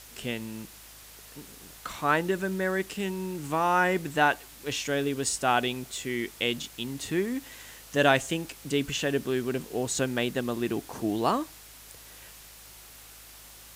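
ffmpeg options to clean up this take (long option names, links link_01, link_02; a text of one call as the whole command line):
ffmpeg -i in.wav -af "bandreject=frequency=52.7:width_type=h:width=4,bandreject=frequency=105.4:width_type=h:width=4,bandreject=frequency=158.1:width_type=h:width=4,afftdn=noise_reduction=24:noise_floor=-49" out.wav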